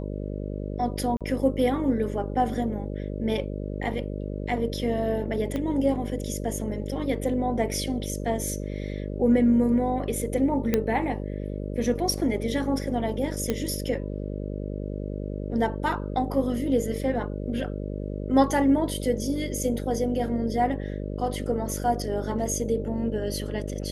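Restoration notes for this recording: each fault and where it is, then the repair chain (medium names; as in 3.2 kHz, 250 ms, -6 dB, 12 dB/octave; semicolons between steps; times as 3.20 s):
buzz 50 Hz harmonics 12 -32 dBFS
1.17–1.21 s: dropout 37 ms
5.56 s: pop -18 dBFS
10.74 s: pop -9 dBFS
13.50 s: pop -12 dBFS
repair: de-click; de-hum 50 Hz, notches 12; interpolate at 1.17 s, 37 ms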